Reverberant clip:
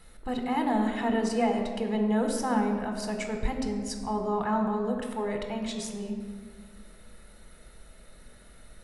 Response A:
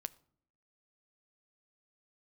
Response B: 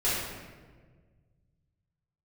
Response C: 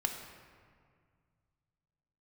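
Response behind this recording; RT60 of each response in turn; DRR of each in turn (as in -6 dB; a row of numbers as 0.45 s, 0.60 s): C; no single decay rate, 1.5 s, 2.0 s; 14.5 dB, -10.5 dB, 3.0 dB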